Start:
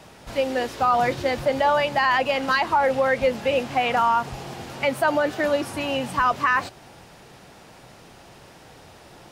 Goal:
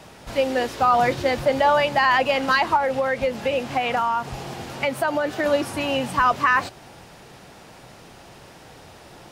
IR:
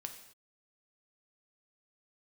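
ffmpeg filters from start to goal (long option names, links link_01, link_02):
-filter_complex "[0:a]asettb=1/sr,asplit=3[link_01][link_02][link_03];[link_01]atrim=end=2.764[link_04];[link_02]atrim=start=2.76:end=5.46,asetpts=PTS-STARTPTS,afade=type=in:duration=0.004:curve=qsin,afade=type=out:start_time=2.696:duration=0.004:curve=qsin,acompressor=threshold=-22dB:ratio=3[link_05];[link_03]atrim=start=5.456[link_06];[link_04][link_05]acrossfade=duration=0.004:curve1=hsin:curve2=qsin[link_07];[link_07][link_06]acrossfade=duration=0.004:curve1=qsin:curve2=hsin,volume=2dB"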